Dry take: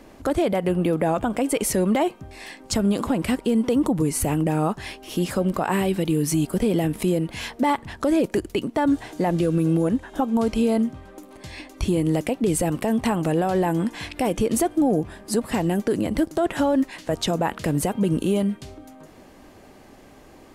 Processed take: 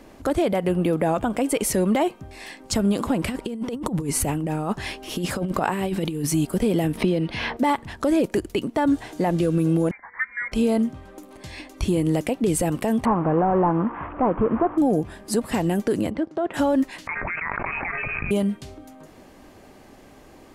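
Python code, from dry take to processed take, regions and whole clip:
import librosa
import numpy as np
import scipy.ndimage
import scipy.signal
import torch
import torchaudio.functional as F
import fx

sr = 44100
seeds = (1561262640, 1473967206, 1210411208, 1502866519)

y = fx.chain(x, sr, fx.high_shelf(hz=9900.0, db=-4.0),
    fx.over_compress(threshold_db=-24.0, ratio=-0.5), at=(3.22, 6.27))
y = fx.chain(y, sr, fx.savgol(points=15),
    fx.band_squash(depth_pct=100), at=(6.97, 7.57))
y = fx.chain(y, sr, fx.highpass(hz=560.0, slope=24),
    fx.freq_invert(carrier_hz=2600), at=(9.91, 10.52))
y = fx.chain(y, sr, fx.delta_mod(bps=16000, step_db=-31.5),
    fx.lowpass_res(hz=1100.0, q=3.1), at=(13.05, 14.78))
y = fx.chain(y, sr, fx.highpass(hz=290.0, slope=6),
    fx.spacing_loss(db_at_10k=29), at=(16.1, 16.54))
y = fx.chain(y, sr, fx.highpass(hz=1300.0, slope=12),
    fx.freq_invert(carrier_hz=2800),
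    fx.env_flatten(amount_pct=100), at=(17.07, 18.31))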